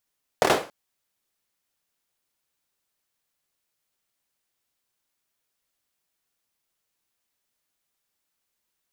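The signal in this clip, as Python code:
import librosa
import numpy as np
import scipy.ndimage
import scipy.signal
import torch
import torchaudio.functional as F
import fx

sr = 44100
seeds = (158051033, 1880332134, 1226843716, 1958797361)

y = fx.drum_clap(sr, seeds[0], length_s=0.28, bursts=4, spacing_ms=26, hz=530.0, decay_s=0.34)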